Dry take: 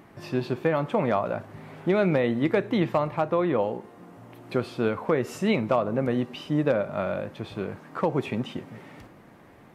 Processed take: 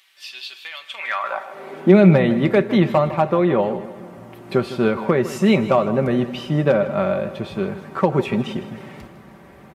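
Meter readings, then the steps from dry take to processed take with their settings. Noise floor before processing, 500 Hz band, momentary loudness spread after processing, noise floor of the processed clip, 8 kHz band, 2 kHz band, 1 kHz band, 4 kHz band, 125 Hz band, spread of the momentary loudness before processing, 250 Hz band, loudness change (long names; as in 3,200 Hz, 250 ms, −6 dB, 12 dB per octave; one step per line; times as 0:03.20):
−52 dBFS, +6.5 dB, 18 LU, −45 dBFS, can't be measured, +6.5 dB, +6.0 dB, +7.5 dB, +9.0 dB, 11 LU, +8.5 dB, +7.5 dB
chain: comb filter 5.2 ms, depth 51%
high-pass filter sweep 3,300 Hz → 62 Hz, 0:00.90–0:02.36
repeating echo 156 ms, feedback 50%, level −14.5 dB
level +5.5 dB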